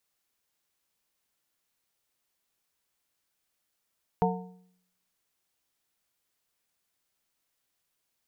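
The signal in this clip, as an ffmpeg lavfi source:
-f lavfi -i "aevalsrc='0.0668*pow(10,-3*t/0.7)*sin(2*PI*182*t)+0.0631*pow(10,-3*t/0.532)*sin(2*PI*455*t)+0.0596*pow(10,-3*t/0.462)*sin(2*PI*728*t)+0.0562*pow(10,-3*t/0.432)*sin(2*PI*910*t)':d=1.55:s=44100"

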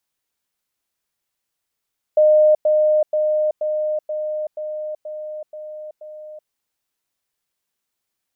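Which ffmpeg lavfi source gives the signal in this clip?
-f lavfi -i "aevalsrc='pow(10,(-9.5-3*floor(t/0.48))/20)*sin(2*PI*612*t)*clip(min(mod(t,0.48),0.38-mod(t,0.48))/0.005,0,1)':d=4.32:s=44100"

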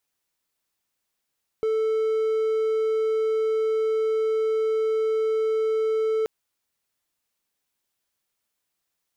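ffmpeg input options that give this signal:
-f lavfi -i "aevalsrc='0.119*(1-4*abs(mod(440*t+0.25,1)-0.5))':d=4.63:s=44100"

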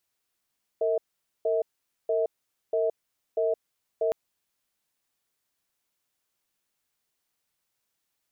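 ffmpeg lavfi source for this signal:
-f lavfi -i "aevalsrc='0.0562*(sin(2*PI*456*t)+sin(2*PI*643*t))*clip(min(mod(t,0.64),0.17-mod(t,0.64))/0.005,0,1)':d=3.31:s=44100"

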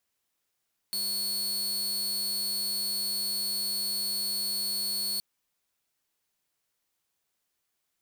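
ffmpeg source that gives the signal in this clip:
-f lavfi -i "aevalsrc='0.0501*(2*mod(4390*t,1)-1)':d=4.27:s=44100"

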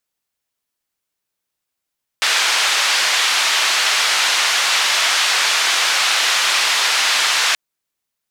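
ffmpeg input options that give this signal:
-f lavfi -i "anoisesrc=c=white:d=5.33:r=44100:seed=1,highpass=f=1000,lowpass=f=4500,volume=-4dB"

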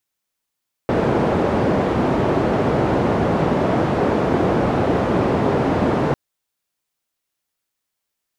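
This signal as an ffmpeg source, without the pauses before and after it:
-f lavfi -i "anoisesrc=c=white:d=5.25:r=44100:seed=1,highpass=f=87,lowpass=f=540,volume=3.2dB"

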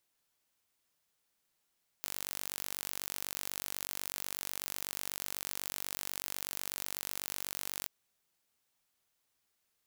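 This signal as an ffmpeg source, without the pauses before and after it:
-f lavfi -i "aevalsrc='0.282*eq(mod(n,917),0)':d=5.83:s=44100"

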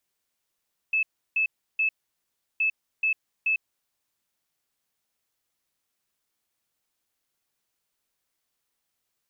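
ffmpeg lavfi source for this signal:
-f lavfi -i "aevalsrc='0.0944*sin(2*PI*2610*t)*clip(min(mod(mod(t,1.67),0.43),0.1-mod(mod(t,1.67),0.43))/0.005,0,1)*lt(mod(t,1.67),1.29)':d=3.34:s=44100"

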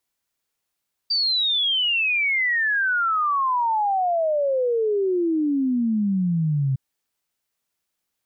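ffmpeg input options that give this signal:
-f lavfi -i "aevalsrc='0.119*clip(min(t,5.66-t)/0.01,0,1)*sin(2*PI*4700*5.66/log(130/4700)*(exp(log(130/4700)*t/5.66)-1))':d=5.66:s=44100"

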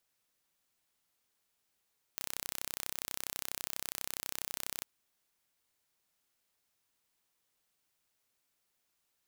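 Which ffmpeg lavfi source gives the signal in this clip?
-f lavfi -i "aevalsrc='0.316*eq(mod(n,1370),0)':d=2.65:s=44100"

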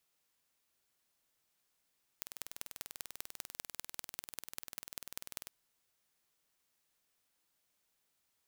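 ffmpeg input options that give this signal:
-f lavfi -i "aevalsrc='0.251*eq(mod(n,2172),0)*(0.5+0.5*eq(mod(n,8688),0))':d=3.26:s=44100"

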